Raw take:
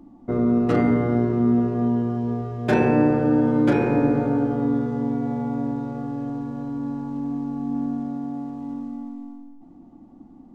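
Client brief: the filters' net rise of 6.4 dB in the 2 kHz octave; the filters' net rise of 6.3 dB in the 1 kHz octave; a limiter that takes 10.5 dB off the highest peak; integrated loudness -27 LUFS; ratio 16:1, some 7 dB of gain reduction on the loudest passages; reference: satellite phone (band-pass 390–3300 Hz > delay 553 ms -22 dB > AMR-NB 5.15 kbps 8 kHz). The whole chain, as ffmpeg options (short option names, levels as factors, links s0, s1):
-af "equalizer=f=1000:t=o:g=8,equalizer=f=2000:t=o:g=6,acompressor=threshold=0.112:ratio=16,alimiter=limit=0.0944:level=0:latency=1,highpass=390,lowpass=3300,aecho=1:1:553:0.0794,volume=2.66" -ar 8000 -c:a libopencore_amrnb -b:a 5150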